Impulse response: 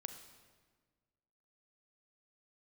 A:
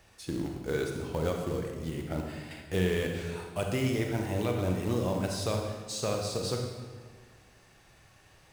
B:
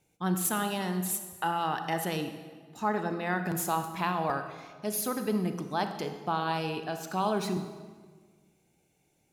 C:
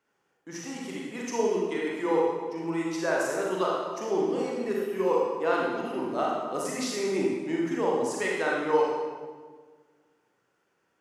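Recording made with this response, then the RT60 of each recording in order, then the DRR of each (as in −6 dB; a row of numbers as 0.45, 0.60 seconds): B; 1.5, 1.5, 1.5 seconds; 1.5, 7.5, −3.5 decibels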